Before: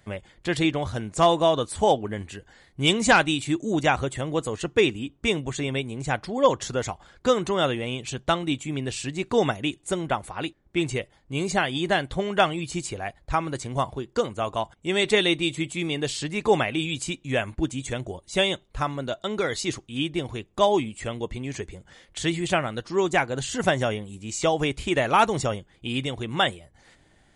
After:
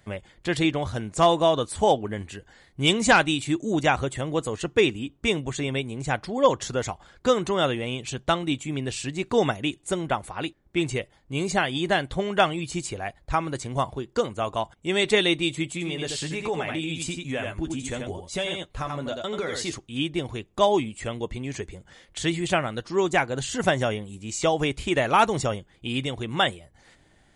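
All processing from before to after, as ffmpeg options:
-filter_complex "[0:a]asettb=1/sr,asplit=3[s0][s1][s2];[s0]atrim=end=15.724[s3];[s1]atrim=start=15.72:end=19.73,asetpts=PTS-STARTPTS,afade=t=in:d=0.004:c=qsin,afade=t=out:st=4.006:d=0.004:c=qsin,asplit=2[s4][s5];[s5]adelay=12,volume=0.398[s6];[s4][s6]amix=inputs=2:normalize=0,atrim=end_sample=176841,aecho=1:1:85:0.447,atrim=end_sample=176841,acompressor=threshold=0.0501:ratio=3:attack=3.2:release=140:knee=1:detection=peak[s7];[s2]atrim=start=19.726[s8];[s3][s7]acrossfade=d=0.004:c1=hsin:c2=qsin[s9];[s9][s8]acrossfade=d=0.004:c1=qsin:c2=hsin"

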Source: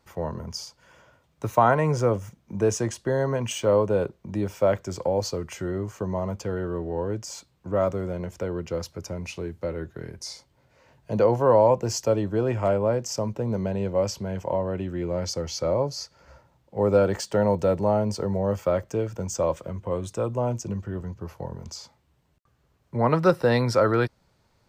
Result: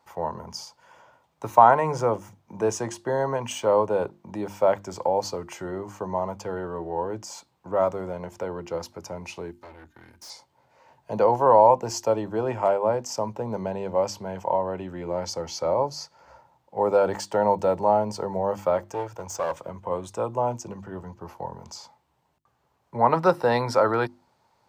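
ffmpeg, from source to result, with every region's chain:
-filter_complex "[0:a]asettb=1/sr,asplit=3[s0][s1][s2];[s0]atrim=end=9.514[s3];[s1]atrim=start=9.51:end=10.3,asetpts=PTS-STARTPTS,afade=t=in:d=0.004:c=qsin,afade=t=out:st=0.786:d=0.004:c=qsin,equalizer=f=560:t=o:w=1.8:g=-14.5,aecho=1:1:3.3:0.82,atrim=end_sample=34839,aeval=exprs='(tanh(89.1*val(0)+0.65)-tanh(0.65))/89.1':c=same[s4];[s2]atrim=start=10.296[s5];[s3][s4]acrossfade=d=0.004:c1=hsin:c2=qsin[s6];[s6][s5]acrossfade=d=0.004:c1=qsin:c2=hsin,asettb=1/sr,asplit=3[s7][s8][s9];[s7]atrim=end=18.924[s10];[s8]atrim=start=18.92:end=19.61,asetpts=PTS-STARTPTS,afade=t=in:d=0.004:c=qsin,afade=t=out:st=0.686:d=0.004:c=qsin,equalizer=f=220:w=3.2:g=-14,bandreject=f=7700:w=28,aeval=exprs='clip(val(0),-1,0.0299)':c=same[s11];[s9]atrim=start=19.606[s12];[s10][s11]acrossfade=d=0.004:c1=hsin:c2=qsin[s13];[s13][s12]acrossfade=d=0.004:c1=qsin:c2=hsin,highpass=f=170:p=1,equalizer=f=870:w=2.1:g=11,bandreject=f=50:t=h:w=6,bandreject=f=100:t=h:w=6,bandreject=f=150:t=h:w=6,bandreject=f=200:t=h:w=6,bandreject=f=250:t=h:w=6,bandreject=f=300:t=h:w=6,bandreject=f=350:t=h:w=6,volume=0.794"

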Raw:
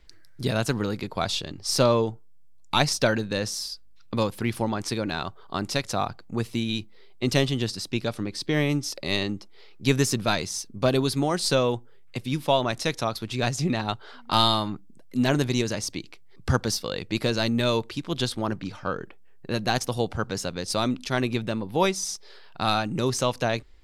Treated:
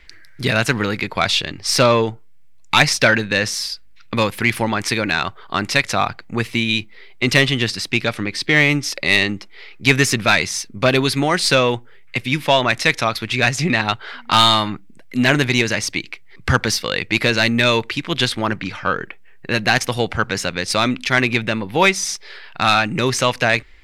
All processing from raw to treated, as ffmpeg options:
-filter_complex "[0:a]asettb=1/sr,asplit=3[s0][s1][s2];[s0]atrim=end=4.164[s3];[s1]atrim=start=4.16:end=5.2,asetpts=PTS-STARTPTS,afade=t=in:d=0.004:c=qsin,afade=t=out:st=1.036:d=0.004:c=qsin,highshelf=f=10000:g=6,deesser=0.3[s4];[s2]atrim=start=5.196[s5];[s3][s4]acrossfade=d=0.004:c1=hsin:c2=qsin[s6];[s6][s5]acrossfade=d=0.004:c1=qsin:c2=hsin,equalizer=f=2100:w=1.1:g=14,acontrast=65,volume=0.891"

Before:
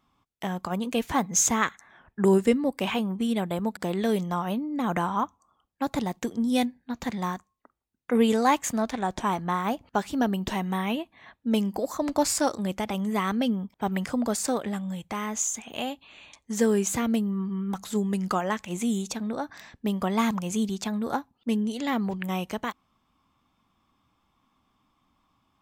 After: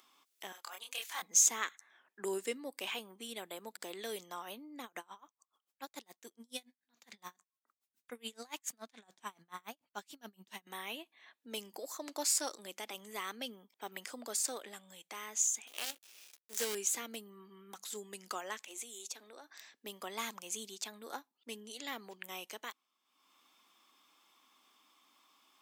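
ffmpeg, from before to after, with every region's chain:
-filter_complex "[0:a]asettb=1/sr,asplit=3[s0][s1][s2];[s0]atrim=end=0.524[s3];[s1]atrim=start=0.52:end=1.22,asetpts=PTS-STARTPTS,afade=t=in:d=0.004:c=qsin,afade=t=out:st=0.696:d=0.004:c=qsin,highpass=980,asplit=2[s4][s5];[s5]adelay=27,volume=0.75[s6];[s4][s6]amix=inputs=2:normalize=0,atrim=end_sample=30870[s7];[s2]atrim=start=1.216[s8];[s3][s7]acrossfade=d=0.004:c1=hsin:c2=qsin[s9];[s9][s8]acrossfade=d=0.004:c1=qsin:c2=hsin,asettb=1/sr,asplit=3[s10][s11][s12];[s10]atrim=end=4.844[s13];[s11]atrim=start=4.84:end=10.67,asetpts=PTS-STARTPTS,afade=t=in:d=0.004:c=qsin,afade=t=out:st=5.826:d=0.004:c=qsin,asubboost=boost=9:cutoff=130,aeval=exprs='val(0)*pow(10,-31*(0.5-0.5*cos(2*PI*7*n/s))/20)':c=same[s14];[s12]atrim=start=10.666[s15];[s13][s14]acrossfade=d=0.004:c1=hsin:c2=qsin[s16];[s16][s15]acrossfade=d=0.004:c1=qsin:c2=hsin,asettb=1/sr,asplit=3[s17][s18][s19];[s17]atrim=end=15.674[s20];[s18]atrim=start=15.67:end=16.75,asetpts=PTS-STARTPTS,afade=t=in:d=0.004:c=qsin,afade=t=out:st=1.076:d=0.004:c=qsin,bandreject=f=50:t=h:w=6,bandreject=f=100:t=h:w=6,bandreject=f=150:t=h:w=6,bandreject=f=200:t=h:w=6,bandreject=f=250:t=h:w=6,bandreject=f=300:t=h:w=6,bandreject=f=350:t=h:w=6,acrusher=bits=5:dc=4:mix=0:aa=0.000001,asplit=2[s21][s22];[s22]adelay=15,volume=0.211[s23];[s21][s23]amix=inputs=2:normalize=0,atrim=end_sample=47628[s24];[s19]atrim=start=16.746[s25];[s20][s24]acrossfade=d=0.004:c1=hsin:c2=qsin[s26];[s26][s25]acrossfade=d=0.004:c1=qsin:c2=hsin,asettb=1/sr,asplit=3[s27][s28][s29];[s27]atrim=end=18.664[s30];[s28]atrim=start=18.66:end=19.58,asetpts=PTS-STARTPTS,afade=t=in:d=0.004:c=qsin,afade=t=out:st=0.916:d=0.004:c=qsin,highpass=f=270:w=0.5412,highpass=f=270:w=1.3066,acompressor=threshold=0.02:ratio=4:attack=3.2:release=140:knee=1:detection=peak[s31];[s29]atrim=start=19.576[s32];[s30][s31]acrossfade=d=0.004:c1=hsin:c2=qsin[s33];[s33][s32]acrossfade=d=0.004:c1=qsin:c2=hsin,highpass=f=370:w=0.5412,highpass=f=370:w=1.3066,equalizer=f=680:w=0.37:g=-14,acompressor=mode=upward:threshold=0.00224:ratio=2.5,volume=0.794"

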